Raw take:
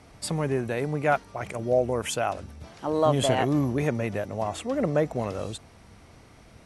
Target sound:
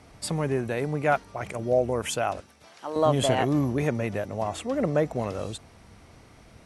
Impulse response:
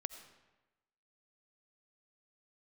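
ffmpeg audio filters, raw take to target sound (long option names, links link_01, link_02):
-filter_complex "[0:a]asettb=1/sr,asplit=3[link_01][link_02][link_03];[link_01]atrim=end=2.404[link_04];[link_02]atrim=start=2.4:end=2.96,asetpts=PTS-STARTPTS,afade=type=in:duration=0.004:curve=qsin,afade=type=out:start_time=0.556:duration=0.004:curve=qsin,highpass=frequency=890:poles=1[link_05];[link_03]atrim=start=2.956[link_06];[link_04][link_05]acrossfade=duration=0.004:curve1=hsin:curve2=qsin[link_07];[link_07][link_06]acrossfade=duration=0.004:curve1=qsin:curve2=hsin"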